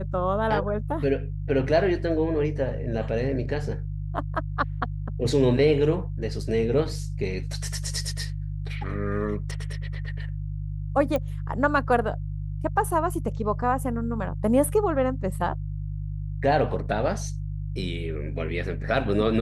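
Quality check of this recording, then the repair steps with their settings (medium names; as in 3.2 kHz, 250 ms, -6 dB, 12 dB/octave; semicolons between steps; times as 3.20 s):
hum 50 Hz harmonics 3 -31 dBFS
11.16 s: pop -15 dBFS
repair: de-click; de-hum 50 Hz, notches 3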